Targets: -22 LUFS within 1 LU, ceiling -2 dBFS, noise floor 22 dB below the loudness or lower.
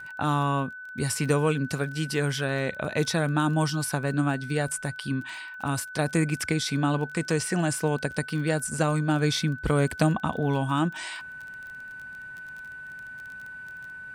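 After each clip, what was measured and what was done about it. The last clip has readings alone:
ticks 21/s; steady tone 1500 Hz; tone level -38 dBFS; loudness -27.0 LUFS; peak -10.5 dBFS; loudness target -22.0 LUFS
-> de-click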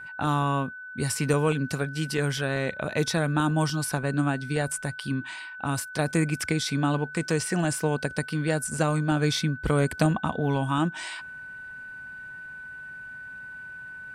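ticks 0/s; steady tone 1500 Hz; tone level -38 dBFS
-> notch 1500 Hz, Q 30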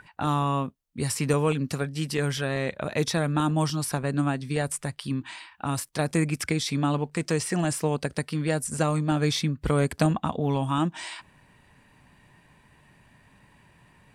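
steady tone none; loudness -27.0 LUFS; peak -10.5 dBFS; loudness target -22.0 LUFS
-> gain +5 dB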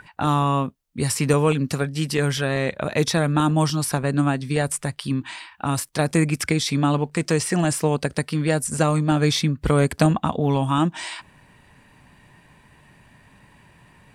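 loudness -22.0 LUFS; peak -5.5 dBFS; noise floor -54 dBFS

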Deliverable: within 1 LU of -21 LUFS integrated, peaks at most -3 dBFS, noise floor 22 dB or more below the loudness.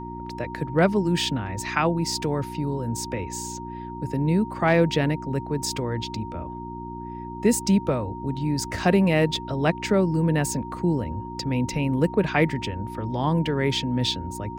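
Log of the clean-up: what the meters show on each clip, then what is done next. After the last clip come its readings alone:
hum 60 Hz; harmonics up to 360 Hz; hum level -34 dBFS; steady tone 930 Hz; tone level -36 dBFS; loudness -24.5 LUFS; peak -8.0 dBFS; loudness target -21.0 LUFS
-> de-hum 60 Hz, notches 6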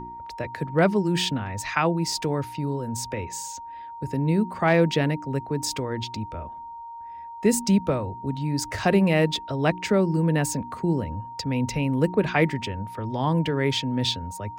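hum none; steady tone 930 Hz; tone level -36 dBFS
-> notch 930 Hz, Q 30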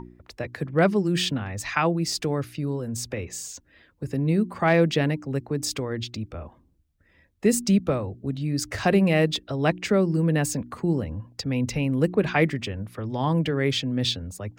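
steady tone none; loudness -25.0 LUFS; peak -8.5 dBFS; loudness target -21.0 LUFS
-> gain +4 dB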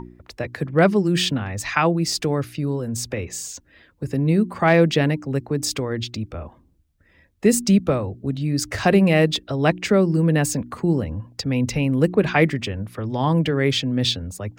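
loudness -21.0 LUFS; peak -4.5 dBFS; noise floor -58 dBFS

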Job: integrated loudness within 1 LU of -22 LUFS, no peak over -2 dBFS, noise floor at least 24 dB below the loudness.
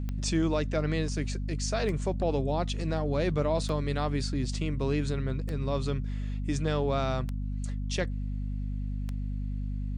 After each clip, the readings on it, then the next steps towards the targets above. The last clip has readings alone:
clicks 6; hum 50 Hz; harmonics up to 250 Hz; hum level -30 dBFS; loudness -31.0 LUFS; peak -16.0 dBFS; loudness target -22.0 LUFS
-> de-click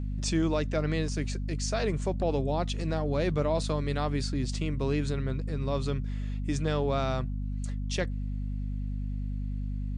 clicks 0; hum 50 Hz; harmonics up to 250 Hz; hum level -30 dBFS
-> notches 50/100/150/200/250 Hz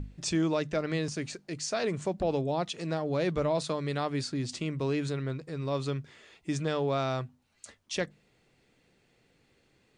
hum none; loudness -32.0 LUFS; peak -18.0 dBFS; loudness target -22.0 LUFS
-> gain +10 dB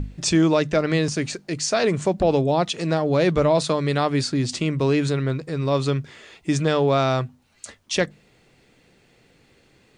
loudness -22.0 LUFS; peak -8.0 dBFS; noise floor -59 dBFS

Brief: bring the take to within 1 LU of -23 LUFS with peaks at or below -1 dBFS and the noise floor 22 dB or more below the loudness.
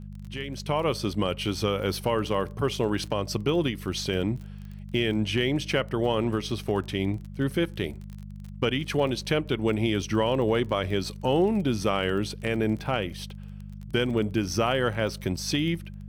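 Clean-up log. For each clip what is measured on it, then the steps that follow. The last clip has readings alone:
ticks 28/s; hum 50 Hz; harmonics up to 200 Hz; hum level -37 dBFS; loudness -27.5 LUFS; peak -12.0 dBFS; loudness target -23.0 LUFS
-> de-click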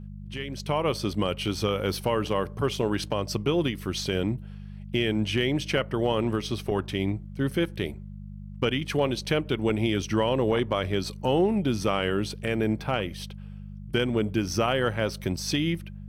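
ticks 0/s; hum 50 Hz; harmonics up to 200 Hz; hum level -37 dBFS
-> de-hum 50 Hz, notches 4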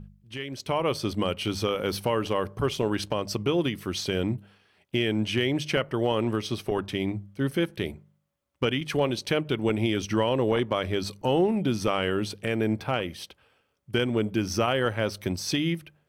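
hum none; loudness -27.5 LUFS; peak -11.5 dBFS; loudness target -23.0 LUFS
-> gain +4.5 dB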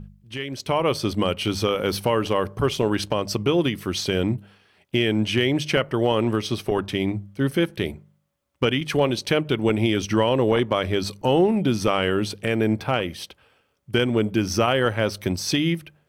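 loudness -23.0 LUFS; peak -7.0 dBFS; noise floor -66 dBFS

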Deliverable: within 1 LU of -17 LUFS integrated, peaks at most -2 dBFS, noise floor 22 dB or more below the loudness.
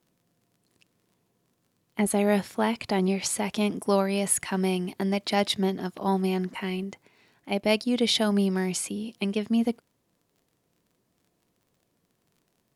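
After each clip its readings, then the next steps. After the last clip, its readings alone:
ticks 30/s; loudness -26.5 LUFS; peak -9.5 dBFS; loudness target -17.0 LUFS
-> de-click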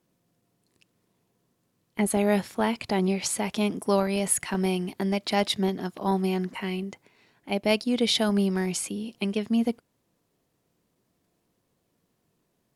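ticks 0.24/s; loudness -26.5 LUFS; peak -9.5 dBFS; loudness target -17.0 LUFS
-> gain +9.5 dB; limiter -2 dBFS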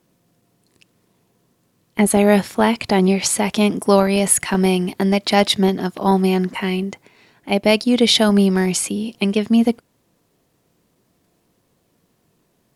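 loudness -17.0 LUFS; peak -2.0 dBFS; noise floor -65 dBFS

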